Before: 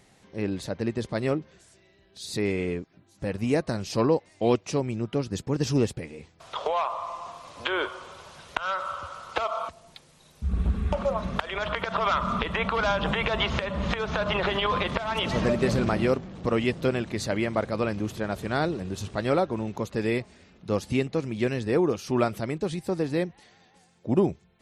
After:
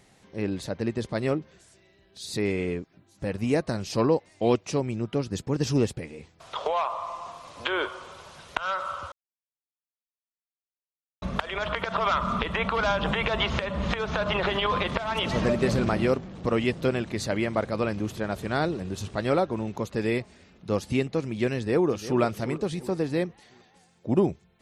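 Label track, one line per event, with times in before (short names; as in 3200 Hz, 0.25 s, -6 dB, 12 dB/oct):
9.120000	11.220000	mute
21.570000	22.210000	echo throw 0.35 s, feedback 45%, level -12.5 dB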